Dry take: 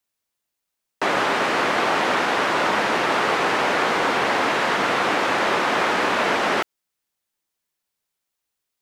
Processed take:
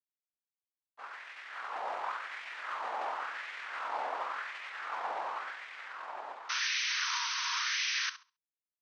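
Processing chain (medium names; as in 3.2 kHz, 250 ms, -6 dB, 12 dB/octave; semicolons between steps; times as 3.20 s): Doppler pass-by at 3.54 s, 14 m/s, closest 13 m; expander -19 dBFS; reverse; compression 12:1, threshold -35 dBFS, peak gain reduction 18 dB; reverse; pitch shift -7.5 st; painted sound noise, 6.49–8.10 s, 910–6300 Hz -36 dBFS; on a send: flutter echo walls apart 11.6 m, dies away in 0.3 s; on the sum: LFO high-pass sine 0.92 Hz 770–2100 Hz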